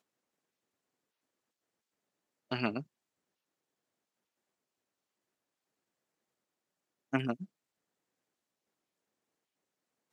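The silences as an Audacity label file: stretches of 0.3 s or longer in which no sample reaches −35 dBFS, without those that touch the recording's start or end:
2.800000	7.130000	silence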